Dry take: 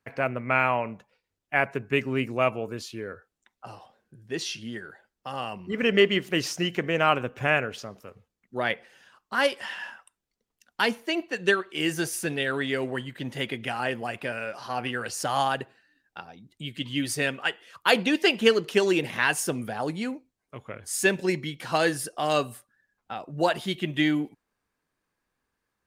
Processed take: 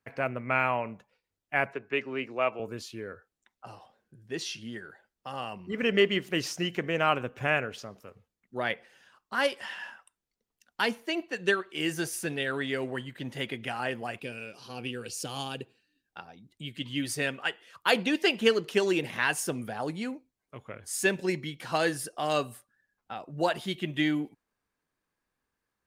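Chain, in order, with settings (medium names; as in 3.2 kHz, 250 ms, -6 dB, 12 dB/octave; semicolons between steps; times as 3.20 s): 1.73–2.60 s: three-band isolator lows -14 dB, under 290 Hz, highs -21 dB, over 5.5 kHz; 14.19–16.08 s: time-frequency box 520–2200 Hz -11 dB; trim -3.5 dB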